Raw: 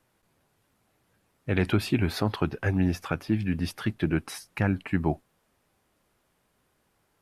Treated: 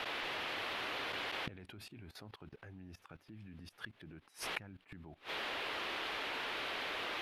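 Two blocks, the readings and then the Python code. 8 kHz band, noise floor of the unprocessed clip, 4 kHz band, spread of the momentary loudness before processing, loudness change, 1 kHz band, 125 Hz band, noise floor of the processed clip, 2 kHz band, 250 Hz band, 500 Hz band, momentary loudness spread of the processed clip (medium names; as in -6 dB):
-8.0 dB, -72 dBFS, +0.5 dB, 6 LU, -11.5 dB, -4.5 dB, -25.5 dB, -70 dBFS, -3.5 dB, -23.5 dB, -13.0 dB, 16 LU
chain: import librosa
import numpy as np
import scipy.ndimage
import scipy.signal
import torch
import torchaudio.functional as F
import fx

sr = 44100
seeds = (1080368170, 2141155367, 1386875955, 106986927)

y = fx.dmg_noise_band(x, sr, seeds[0], low_hz=280.0, high_hz=3400.0, level_db=-53.0)
y = fx.level_steps(y, sr, step_db=18)
y = fx.gate_flip(y, sr, shuts_db=-40.0, range_db=-29)
y = y * 10.0 ** (13.5 / 20.0)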